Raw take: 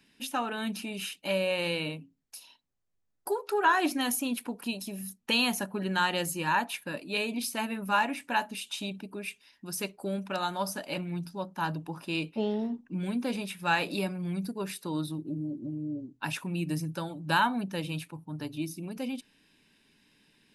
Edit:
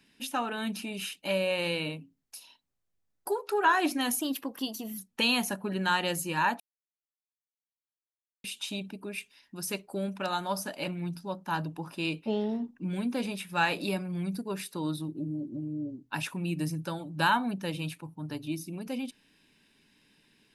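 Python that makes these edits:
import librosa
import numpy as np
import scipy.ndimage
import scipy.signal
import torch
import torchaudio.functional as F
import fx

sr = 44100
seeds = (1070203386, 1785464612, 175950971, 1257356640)

y = fx.edit(x, sr, fx.speed_span(start_s=4.21, length_s=0.87, speed=1.13),
    fx.silence(start_s=6.7, length_s=1.84), tone=tone)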